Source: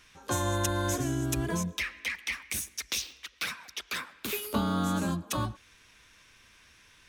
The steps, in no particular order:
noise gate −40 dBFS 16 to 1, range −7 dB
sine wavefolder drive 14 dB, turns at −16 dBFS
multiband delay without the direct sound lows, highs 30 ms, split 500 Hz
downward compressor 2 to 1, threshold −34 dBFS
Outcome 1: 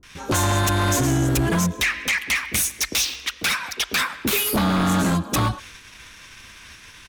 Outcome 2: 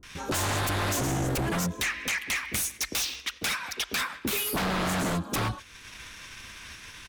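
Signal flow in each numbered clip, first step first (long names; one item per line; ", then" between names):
multiband delay without the direct sound, then downward compressor, then sine wavefolder, then noise gate
multiband delay without the direct sound, then sine wavefolder, then downward compressor, then noise gate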